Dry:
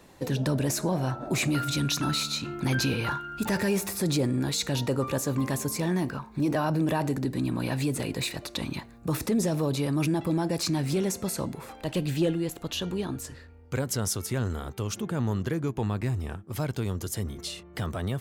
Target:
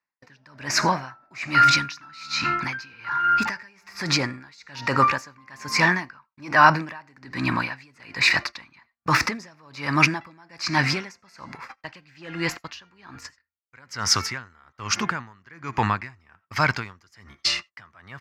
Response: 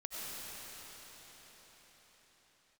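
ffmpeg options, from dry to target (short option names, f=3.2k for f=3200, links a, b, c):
-filter_complex "[0:a]highpass=f=42:p=1,equalizer=f=2.1k:w=1:g=14.5,dynaudnorm=f=420:g=3:m=5dB,agate=range=-43dB:threshold=-29dB:ratio=16:detection=peak,asplit=2[a][b];[1:a]atrim=start_sample=2205,afade=t=out:st=0.14:d=0.01,atrim=end_sample=6615,lowshelf=f=450:g=-11[c];[b][c]afir=irnorm=-1:irlink=0,volume=-9dB[d];[a][d]amix=inputs=2:normalize=0,asettb=1/sr,asplit=3[e][f][g];[e]atrim=end=3.454[h];[f]atrim=start=3.45:end=4.58,asetpts=PTS-STARTPTS,afade=t=in:d=0.004:c=qsin,afade=t=out:st=1.126:d=0.004:c=qsin,acompressor=threshold=-18dB:ratio=6[i];[g]atrim=start=4.576[j];[h][i]acrossfade=d=0.004:c1=hsin:c2=qsin[k];[k][j]acrossfade=d=0.004:c1=qsin:c2=hsin,firequalizer=gain_entry='entry(270,0);entry(430,-4);entry(1000,11);entry(3500,-3);entry(4900,12);entry(8900,-10)':delay=0.05:min_phase=1,aeval=exprs='val(0)*pow(10,-33*(0.5-0.5*cos(2*PI*1.2*n/s))/20)':c=same,volume=-1.5dB"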